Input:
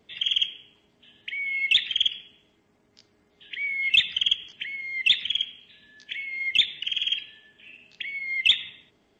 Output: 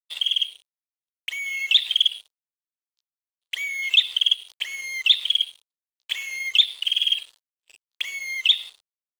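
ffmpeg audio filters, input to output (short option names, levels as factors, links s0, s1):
-af "aeval=exprs='sgn(val(0))*max(abs(val(0))-0.00596,0)':c=same,highshelf=f=6000:g=6,dynaudnorm=f=520:g=5:m=2.24,agate=range=0.02:threshold=0.00355:ratio=16:detection=peak,acompressor=threshold=0.02:ratio=2,equalizer=f=125:t=o:w=1:g=-11,equalizer=f=250:t=o:w=1:g=-11,equalizer=f=500:t=o:w=1:g=5,equalizer=f=1000:t=o:w=1:g=6,equalizer=f=2000:t=o:w=1:g=-5,equalizer=f=4000:t=o:w=1:g=11,volume=1.33"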